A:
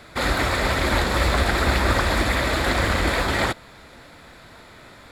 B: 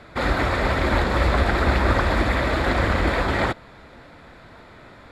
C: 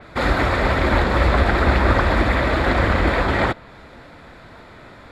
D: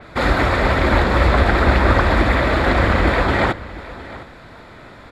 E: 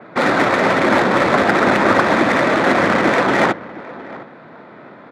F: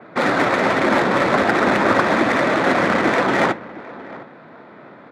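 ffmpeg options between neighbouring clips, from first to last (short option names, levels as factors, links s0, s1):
-af "lowpass=f=1900:p=1,volume=1.19"
-af "adynamicequalizer=threshold=0.00708:dfrequency=4400:dqfactor=0.7:tfrequency=4400:tqfactor=0.7:attack=5:release=100:ratio=0.375:range=2.5:mode=cutabove:tftype=highshelf,volume=1.41"
-af "aecho=1:1:711:0.133,volume=1.26"
-af "adynamicsmooth=sensitivity=1.5:basefreq=1800,highpass=f=160:w=0.5412,highpass=f=160:w=1.3066,volume=1.5"
-af "flanger=delay=2.6:depth=4.7:regen=-80:speed=1.3:shape=sinusoidal,volume=1.26"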